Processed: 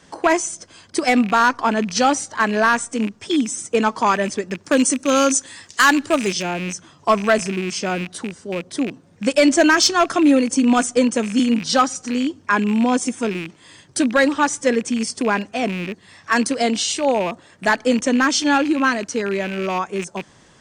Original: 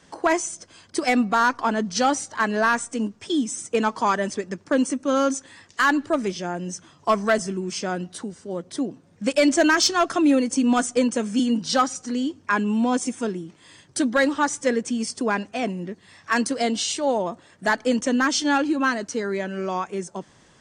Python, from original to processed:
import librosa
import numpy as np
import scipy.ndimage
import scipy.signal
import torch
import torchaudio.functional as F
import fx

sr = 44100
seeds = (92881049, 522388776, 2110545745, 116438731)

y = fx.rattle_buzz(x, sr, strikes_db=-36.0, level_db=-24.0)
y = fx.high_shelf(y, sr, hz=3800.0, db=11.5, at=(4.64, 6.43))
y = y * librosa.db_to_amplitude(4.0)